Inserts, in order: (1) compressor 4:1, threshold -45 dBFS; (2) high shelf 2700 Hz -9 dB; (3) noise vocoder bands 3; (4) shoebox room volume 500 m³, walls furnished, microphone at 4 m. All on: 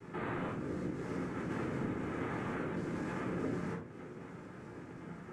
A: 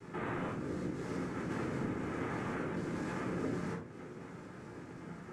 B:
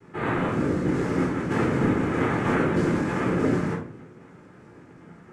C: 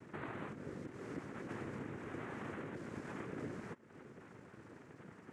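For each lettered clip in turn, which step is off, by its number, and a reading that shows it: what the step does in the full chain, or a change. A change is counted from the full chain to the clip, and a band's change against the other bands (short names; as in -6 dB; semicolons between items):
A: 2, 8 kHz band +3.5 dB; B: 1, mean gain reduction 10.0 dB; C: 4, echo-to-direct 2.5 dB to none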